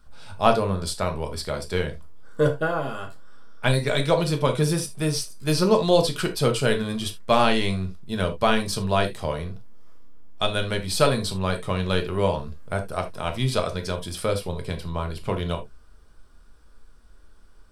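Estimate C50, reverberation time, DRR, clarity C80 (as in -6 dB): 12.5 dB, not exponential, 4.5 dB, 23.0 dB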